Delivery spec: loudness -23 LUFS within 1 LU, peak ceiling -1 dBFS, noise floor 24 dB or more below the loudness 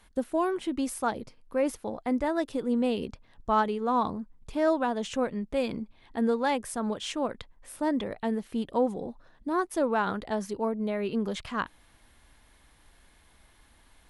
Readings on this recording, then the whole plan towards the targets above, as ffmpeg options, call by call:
loudness -30.0 LUFS; peak -13.5 dBFS; loudness target -23.0 LUFS
-> -af "volume=7dB"

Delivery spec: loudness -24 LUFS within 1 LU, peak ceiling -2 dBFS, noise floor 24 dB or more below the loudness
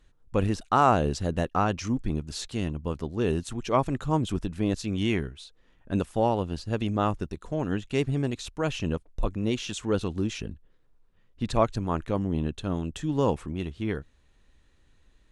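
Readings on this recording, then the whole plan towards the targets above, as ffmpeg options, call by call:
loudness -28.5 LUFS; peak -8.5 dBFS; loudness target -24.0 LUFS
-> -af "volume=4.5dB"

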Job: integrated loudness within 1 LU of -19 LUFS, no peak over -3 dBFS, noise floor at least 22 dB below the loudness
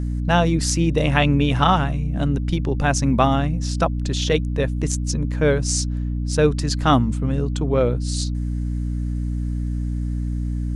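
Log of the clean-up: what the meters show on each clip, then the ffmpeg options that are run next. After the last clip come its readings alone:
hum 60 Hz; harmonics up to 300 Hz; hum level -21 dBFS; loudness -21.0 LUFS; peak -2.5 dBFS; loudness target -19.0 LUFS
-> -af "bandreject=f=60:t=h:w=4,bandreject=f=120:t=h:w=4,bandreject=f=180:t=h:w=4,bandreject=f=240:t=h:w=4,bandreject=f=300:t=h:w=4"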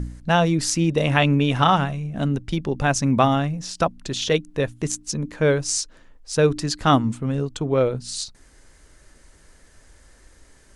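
hum none; loudness -22.0 LUFS; peak -3.5 dBFS; loudness target -19.0 LUFS
-> -af "volume=3dB,alimiter=limit=-3dB:level=0:latency=1"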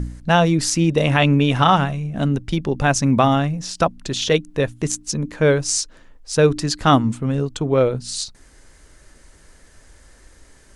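loudness -19.0 LUFS; peak -3.0 dBFS; noise floor -50 dBFS

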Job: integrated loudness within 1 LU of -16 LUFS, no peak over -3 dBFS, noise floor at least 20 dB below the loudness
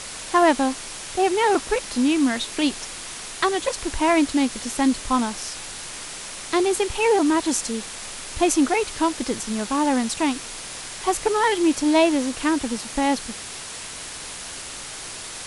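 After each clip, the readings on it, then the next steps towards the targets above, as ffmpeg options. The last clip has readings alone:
noise floor -36 dBFS; noise floor target -43 dBFS; loudness -23.0 LUFS; peak -6.0 dBFS; loudness target -16.0 LUFS
-> -af "afftdn=nr=7:nf=-36"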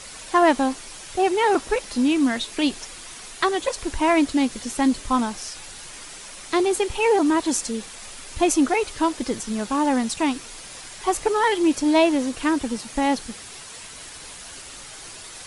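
noise floor -40 dBFS; noise floor target -42 dBFS
-> -af "afftdn=nr=6:nf=-40"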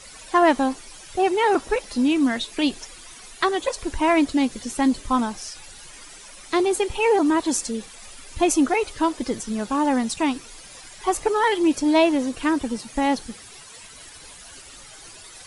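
noise floor -44 dBFS; loudness -22.0 LUFS; peak -6.5 dBFS; loudness target -16.0 LUFS
-> -af "volume=6dB,alimiter=limit=-3dB:level=0:latency=1"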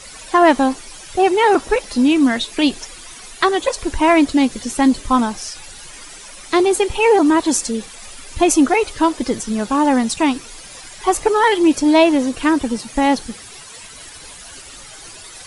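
loudness -16.5 LUFS; peak -3.0 dBFS; noise floor -38 dBFS

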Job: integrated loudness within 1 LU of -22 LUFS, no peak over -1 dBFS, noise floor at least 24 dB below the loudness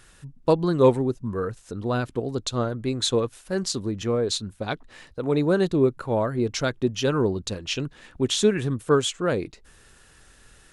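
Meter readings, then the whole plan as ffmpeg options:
loudness -25.0 LUFS; peak -5.5 dBFS; loudness target -22.0 LUFS
-> -af "volume=3dB"

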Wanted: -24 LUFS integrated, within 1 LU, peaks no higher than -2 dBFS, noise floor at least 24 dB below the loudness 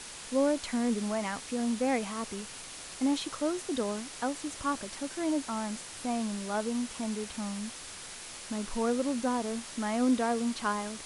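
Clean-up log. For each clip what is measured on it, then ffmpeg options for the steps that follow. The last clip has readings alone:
noise floor -45 dBFS; noise floor target -57 dBFS; loudness -32.5 LUFS; peak -16.5 dBFS; loudness target -24.0 LUFS
-> -af "afftdn=nr=12:nf=-45"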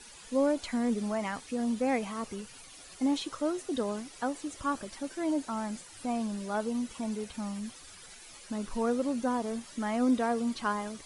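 noise floor -51 dBFS; noise floor target -57 dBFS
-> -af "afftdn=nr=6:nf=-51"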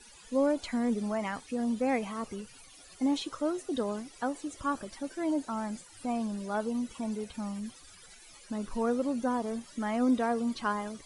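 noise floor -54 dBFS; noise floor target -57 dBFS
-> -af "afftdn=nr=6:nf=-54"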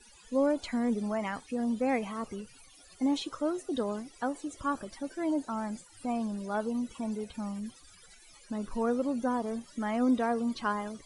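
noise floor -57 dBFS; loudness -32.5 LUFS; peak -17.0 dBFS; loudness target -24.0 LUFS
-> -af "volume=8.5dB"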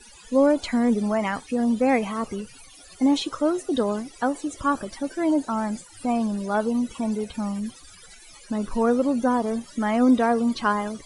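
loudness -24.0 LUFS; peak -8.5 dBFS; noise floor -48 dBFS

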